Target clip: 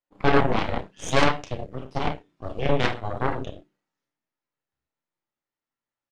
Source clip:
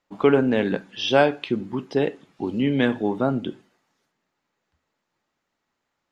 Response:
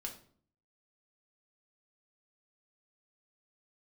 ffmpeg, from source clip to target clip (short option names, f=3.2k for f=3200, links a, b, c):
-filter_complex "[0:a]asplit=2[a][b];[b]adelay=31,volume=-7dB[c];[a][c]amix=inputs=2:normalize=0[d];[1:a]atrim=start_sample=2205,atrim=end_sample=3528,asetrate=27342,aresample=44100[e];[d][e]afir=irnorm=-1:irlink=0,aeval=exprs='0.891*(cos(1*acos(clip(val(0)/0.891,-1,1)))-cos(1*PI/2))+0.178*(cos(3*acos(clip(val(0)/0.891,-1,1)))-cos(3*PI/2))+0.0501*(cos(5*acos(clip(val(0)/0.891,-1,1)))-cos(5*PI/2))+0.112*(cos(7*acos(clip(val(0)/0.891,-1,1)))-cos(7*PI/2))+0.158*(cos(8*acos(clip(val(0)/0.891,-1,1)))-cos(8*PI/2))':c=same,volume=-3dB"